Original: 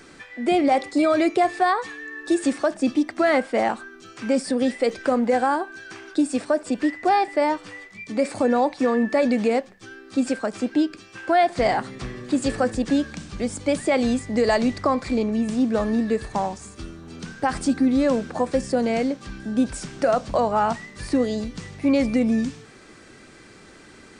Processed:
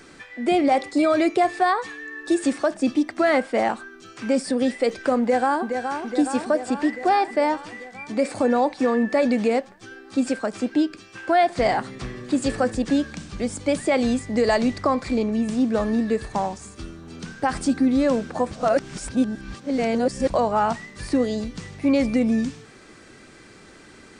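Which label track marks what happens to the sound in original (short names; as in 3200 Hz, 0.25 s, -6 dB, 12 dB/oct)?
5.200000	5.730000	echo throw 0.42 s, feedback 70%, level -6.5 dB
18.510000	20.300000	reverse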